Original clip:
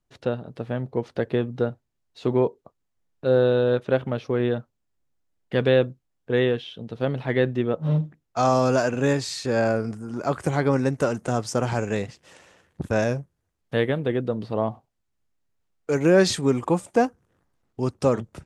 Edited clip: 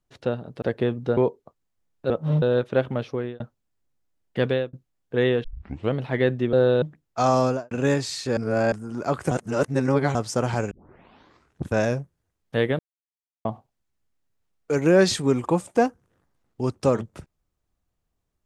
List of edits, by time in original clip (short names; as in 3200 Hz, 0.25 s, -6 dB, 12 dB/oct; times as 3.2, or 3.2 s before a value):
0.62–1.14 cut
1.69–2.36 cut
3.29–3.58 swap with 7.69–8.01
4.22–4.56 fade out linear
5.58–5.89 fade out
6.6 tape start 0.49 s
8.6–8.9 studio fade out
9.56–9.91 reverse
10.5–11.34 reverse
11.9 tape start 0.96 s
13.98–14.64 mute